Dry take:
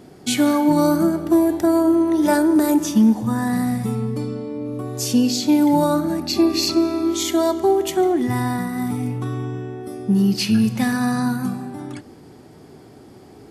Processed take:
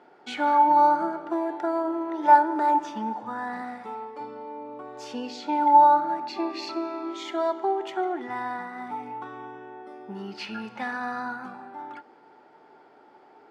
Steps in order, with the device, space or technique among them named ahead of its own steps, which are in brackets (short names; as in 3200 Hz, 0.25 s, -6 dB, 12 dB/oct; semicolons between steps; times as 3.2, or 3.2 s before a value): 3.61–4.19 HPF 150 Hz -> 380 Hz 12 dB/oct; tin-can telephone (BPF 570–2300 Hz; small resonant body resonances 880/1400 Hz, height 15 dB, ringing for 85 ms); gain -4 dB